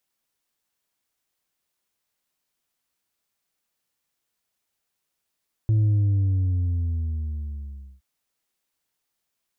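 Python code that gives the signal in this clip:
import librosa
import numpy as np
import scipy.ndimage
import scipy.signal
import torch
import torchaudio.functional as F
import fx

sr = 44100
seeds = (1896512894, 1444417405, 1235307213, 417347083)

y = fx.sub_drop(sr, level_db=-17.0, start_hz=110.0, length_s=2.32, drive_db=3.0, fade_s=2.21, end_hz=65.0)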